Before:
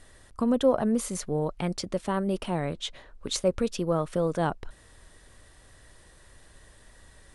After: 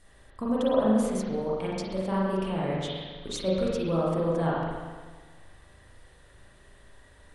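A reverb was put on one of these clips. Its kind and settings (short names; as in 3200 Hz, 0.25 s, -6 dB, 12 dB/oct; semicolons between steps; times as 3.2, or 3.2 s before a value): spring tank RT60 1.5 s, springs 37/42 ms, chirp 25 ms, DRR -6.5 dB; gain -7 dB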